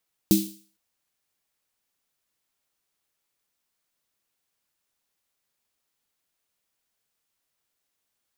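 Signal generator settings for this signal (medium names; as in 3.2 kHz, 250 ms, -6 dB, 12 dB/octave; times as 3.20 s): snare drum length 0.46 s, tones 200 Hz, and 320 Hz, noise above 3.2 kHz, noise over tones -8 dB, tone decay 0.38 s, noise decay 0.47 s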